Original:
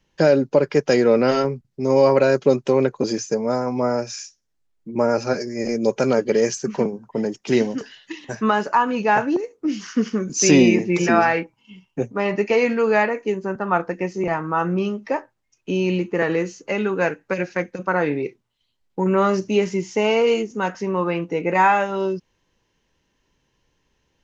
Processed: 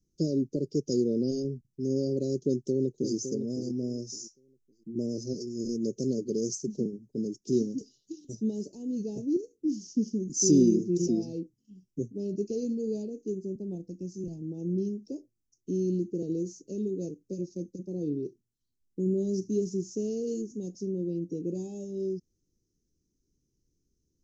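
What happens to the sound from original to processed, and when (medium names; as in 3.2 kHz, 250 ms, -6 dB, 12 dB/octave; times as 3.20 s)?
2.40–3.15 s: echo throw 560 ms, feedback 20%, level -8.5 dB
13.75–14.42 s: peaking EQ 410 Hz -8 dB 1 oct
whole clip: elliptic band-stop 360–5600 Hz, stop band 60 dB; trim -6 dB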